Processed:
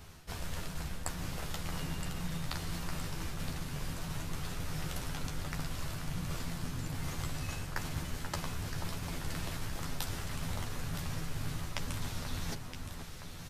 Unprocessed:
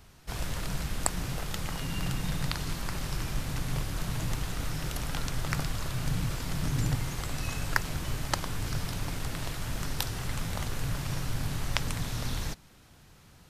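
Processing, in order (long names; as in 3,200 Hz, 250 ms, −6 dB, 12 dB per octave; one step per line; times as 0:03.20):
reversed playback
downward compressor 12 to 1, threshold −37 dBFS, peak gain reduction 18.5 dB
reversed playback
double-tracking delay 12 ms −5 dB
delay that swaps between a low-pass and a high-pass 484 ms, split 1,700 Hz, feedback 79%, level −6.5 dB
level +2 dB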